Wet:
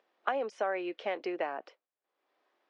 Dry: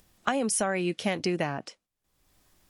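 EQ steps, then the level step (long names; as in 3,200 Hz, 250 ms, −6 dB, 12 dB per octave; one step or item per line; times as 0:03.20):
high-pass filter 400 Hz 24 dB per octave
high-frequency loss of the air 160 metres
head-to-tape spacing loss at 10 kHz 23 dB
0.0 dB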